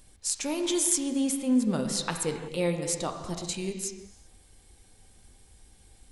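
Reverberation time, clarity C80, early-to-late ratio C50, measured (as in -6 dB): not exponential, 7.5 dB, 6.0 dB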